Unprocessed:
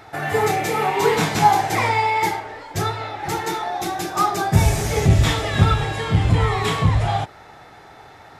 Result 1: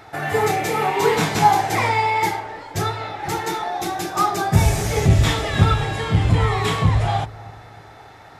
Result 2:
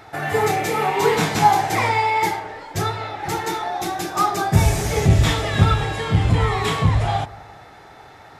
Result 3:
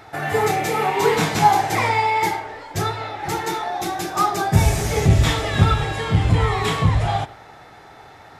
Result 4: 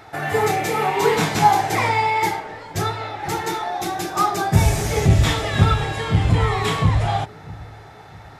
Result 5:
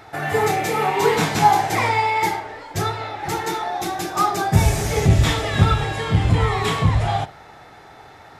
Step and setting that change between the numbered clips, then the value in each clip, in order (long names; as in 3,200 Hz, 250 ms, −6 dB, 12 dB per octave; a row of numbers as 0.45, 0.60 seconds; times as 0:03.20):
bucket-brigade delay, delay time: 306, 180, 89, 647, 60 milliseconds